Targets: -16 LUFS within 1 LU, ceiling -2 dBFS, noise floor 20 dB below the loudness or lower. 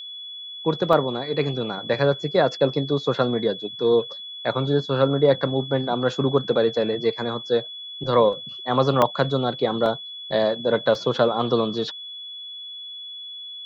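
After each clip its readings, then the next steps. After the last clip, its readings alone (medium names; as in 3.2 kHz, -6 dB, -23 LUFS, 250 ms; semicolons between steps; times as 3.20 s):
dropouts 4; longest dropout 1.5 ms; steady tone 3.4 kHz; tone level -34 dBFS; loudness -22.5 LUFS; peak level -4.0 dBFS; loudness target -16.0 LUFS
-> interpolate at 0.93/9.02/9.86/10.95 s, 1.5 ms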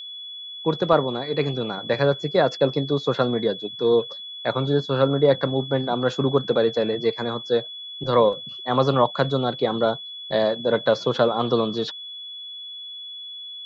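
dropouts 0; steady tone 3.4 kHz; tone level -34 dBFS
-> band-stop 3.4 kHz, Q 30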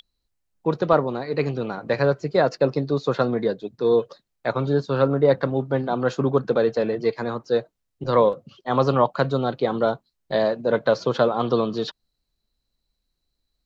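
steady tone not found; loudness -23.0 LUFS; peak level -4.0 dBFS; loudness target -16.0 LUFS
-> trim +7 dB; peak limiter -2 dBFS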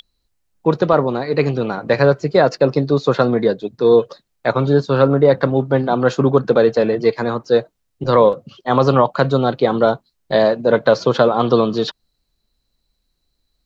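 loudness -16.5 LUFS; peak level -2.0 dBFS; noise floor -71 dBFS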